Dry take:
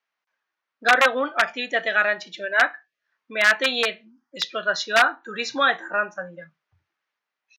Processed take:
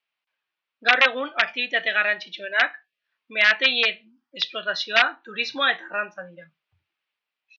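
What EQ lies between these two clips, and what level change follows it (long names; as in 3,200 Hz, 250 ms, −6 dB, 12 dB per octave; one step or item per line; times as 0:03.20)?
dynamic equaliser 1,900 Hz, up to +6 dB, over −33 dBFS, Q 3.2
high-frequency loss of the air 260 metres
flat-topped bell 3,900 Hz +12.5 dB
−3.5 dB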